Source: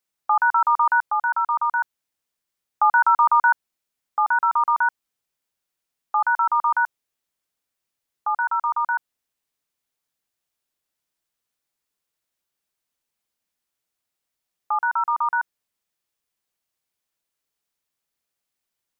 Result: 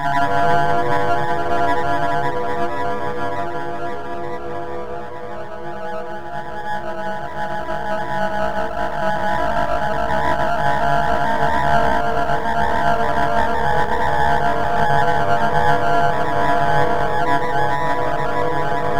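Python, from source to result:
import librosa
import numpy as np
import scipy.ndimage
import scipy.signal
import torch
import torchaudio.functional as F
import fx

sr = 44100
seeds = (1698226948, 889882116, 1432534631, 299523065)

p1 = fx.partial_stretch(x, sr, pct=77)
p2 = scipy.signal.sosfilt(scipy.signal.butter(2, 1100.0, 'lowpass', fs=sr, output='sos'), p1)
p3 = fx.tilt_shelf(p2, sr, db=-4.0, hz=700.0)
p4 = fx.quant_dither(p3, sr, seeds[0], bits=10, dither='none')
p5 = fx.paulstretch(p4, sr, seeds[1], factor=13.0, window_s=1.0, from_s=3.48)
p6 = p5 + fx.echo_single(p5, sr, ms=830, db=-9.0, dry=0)
p7 = np.maximum(p6, 0.0)
p8 = fx.echo_pitch(p7, sr, ms=204, semitones=-6, count=2, db_per_echo=-6.0)
y = p8 * 10.0 ** (7.0 / 20.0)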